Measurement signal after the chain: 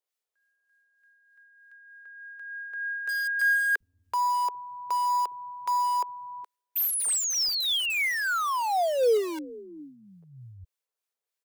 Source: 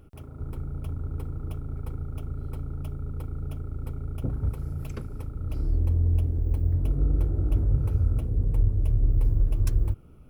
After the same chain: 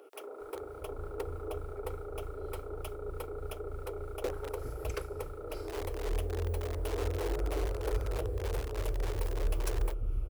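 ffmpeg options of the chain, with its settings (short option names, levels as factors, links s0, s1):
-filter_complex "[0:a]lowshelf=f=300:t=q:w=3:g=-12,acrossover=split=1100[s0][s1];[s0]aeval=exprs='val(0)*(1-0.5/2+0.5/2*cos(2*PI*3.3*n/s))':c=same[s2];[s1]aeval=exprs='val(0)*(1-0.5/2-0.5/2*cos(2*PI*3.3*n/s))':c=same[s3];[s2][s3]amix=inputs=2:normalize=0,asplit=2[s4][s5];[s5]aeval=exprs='(mod(39.8*val(0)+1,2)-1)/39.8':c=same,volume=0.316[s6];[s4][s6]amix=inputs=2:normalize=0,equalizer=f=150:w=0.92:g=-8,acrossover=split=250[s7][s8];[s7]adelay=410[s9];[s9][s8]amix=inputs=2:normalize=0,volume=1.78"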